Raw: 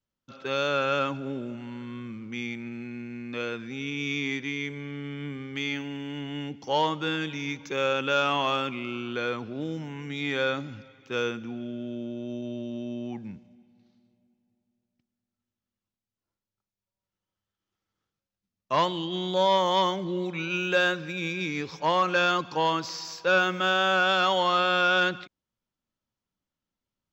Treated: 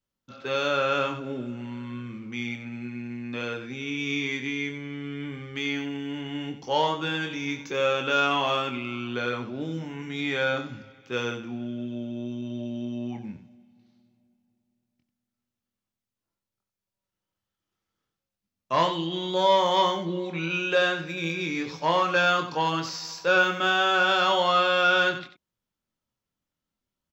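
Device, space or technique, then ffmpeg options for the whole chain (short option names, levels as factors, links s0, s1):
slapback doubling: -filter_complex "[0:a]asettb=1/sr,asplit=3[s0][s1][s2];[s0]atrim=end=20.064[s3];[s1]atrim=start=20.06:end=20.99,asetpts=PTS-STARTPTS,afade=t=in:d=0.004:c=qsin,afade=t=out:st=0.926:d=0.004:c=qsin,lowpass=6800[s4];[s2]atrim=start=20.986[s5];[s3][s4]acrossfade=d=0.004:c1=hsin:c2=qsin[s6];[s6][s5]acrossfade=d=0.004:c1=qsin:c2=hsin,asplit=3[s7][s8][s9];[s8]adelay=24,volume=0.501[s10];[s9]adelay=92,volume=0.316[s11];[s7][s10][s11]amix=inputs=3:normalize=0"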